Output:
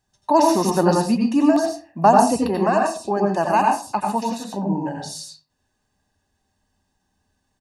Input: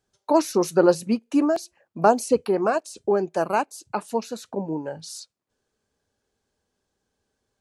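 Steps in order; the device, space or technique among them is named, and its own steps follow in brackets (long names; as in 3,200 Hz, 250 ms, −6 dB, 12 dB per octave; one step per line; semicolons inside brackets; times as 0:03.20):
microphone above a desk (comb filter 1.1 ms, depth 64%; convolution reverb RT60 0.40 s, pre-delay 82 ms, DRR 0.5 dB)
level +1.5 dB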